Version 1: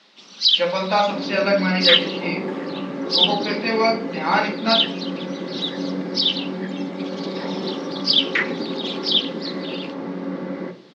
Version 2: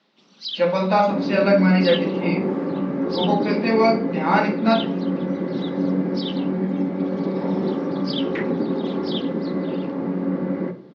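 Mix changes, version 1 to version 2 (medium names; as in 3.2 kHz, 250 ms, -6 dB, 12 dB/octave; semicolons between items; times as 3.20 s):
first sound -9.5 dB; master: add tilt EQ -2.5 dB/octave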